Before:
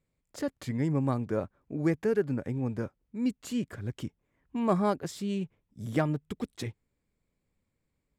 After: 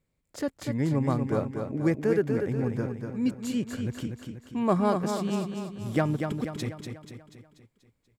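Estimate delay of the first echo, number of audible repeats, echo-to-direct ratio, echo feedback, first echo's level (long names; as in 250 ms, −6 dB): 242 ms, 5, −4.5 dB, 51%, −6.0 dB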